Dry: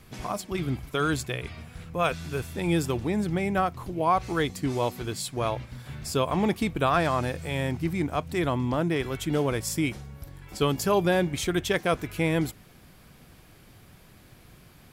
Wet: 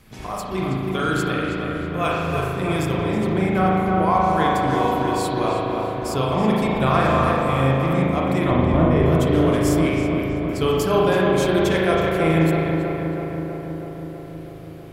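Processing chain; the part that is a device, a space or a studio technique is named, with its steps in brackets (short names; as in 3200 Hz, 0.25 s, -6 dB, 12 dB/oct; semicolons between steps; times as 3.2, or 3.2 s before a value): 8.51–9.06 tilt -3 dB/oct; dub delay into a spring reverb (darkening echo 0.323 s, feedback 74%, low-pass 2300 Hz, level -3.5 dB; spring tank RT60 1.6 s, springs 37 ms, chirp 25 ms, DRR -3 dB)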